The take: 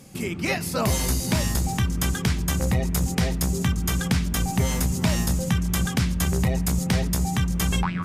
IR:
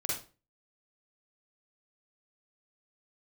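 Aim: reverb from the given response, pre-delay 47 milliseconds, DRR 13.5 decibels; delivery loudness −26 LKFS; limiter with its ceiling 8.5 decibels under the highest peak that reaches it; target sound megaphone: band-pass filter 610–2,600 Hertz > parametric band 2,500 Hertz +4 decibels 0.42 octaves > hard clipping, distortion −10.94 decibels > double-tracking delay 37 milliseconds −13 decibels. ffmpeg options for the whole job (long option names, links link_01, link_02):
-filter_complex "[0:a]alimiter=limit=-22dB:level=0:latency=1,asplit=2[link_01][link_02];[1:a]atrim=start_sample=2205,adelay=47[link_03];[link_02][link_03]afir=irnorm=-1:irlink=0,volume=-18dB[link_04];[link_01][link_04]amix=inputs=2:normalize=0,highpass=610,lowpass=2600,equalizer=frequency=2500:width_type=o:width=0.42:gain=4,asoftclip=type=hard:threshold=-35dB,asplit=2[link_05][link_06];[link_06]adelay=37,volume=-13dB[link_07];[link_05][link_07]amix=inputs=2:normalize=0,volume=15dB"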